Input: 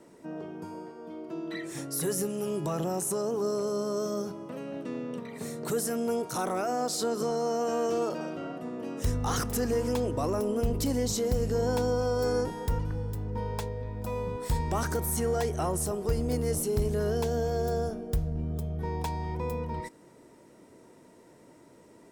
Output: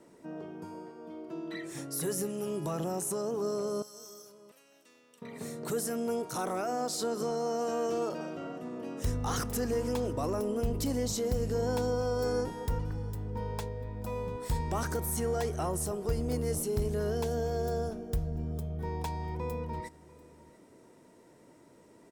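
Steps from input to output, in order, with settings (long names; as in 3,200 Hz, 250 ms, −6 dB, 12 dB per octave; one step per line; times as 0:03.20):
0:03.82–0:05.22: first difference
single-tap delay 692 ms −22.5 dB
level −3 dB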